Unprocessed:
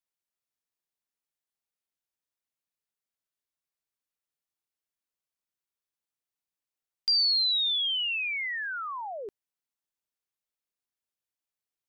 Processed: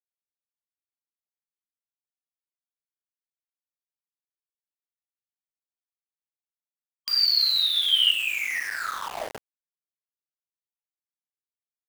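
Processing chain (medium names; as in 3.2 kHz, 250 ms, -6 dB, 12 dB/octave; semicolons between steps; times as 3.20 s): algorithmic reverb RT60 0.94 s, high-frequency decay 0.85×, pre-delay 5 ms, DRR -9 dB; small samples zeroed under -25.5 dBFS; time-frequency box 6.18–8.11 s, 1.1–3.2 kHz +7 dB; tape noise reduction on one side only encoder only; trim -6 dB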